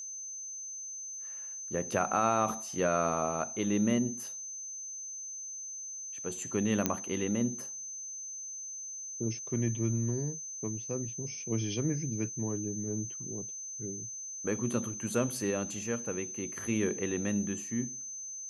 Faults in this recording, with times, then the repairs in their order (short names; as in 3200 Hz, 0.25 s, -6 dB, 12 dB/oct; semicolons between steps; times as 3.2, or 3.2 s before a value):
tone 6200 Hz -39 dBFS
6.86 pop -11 dBFS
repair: de-click; notch 6200 Hz, Q 30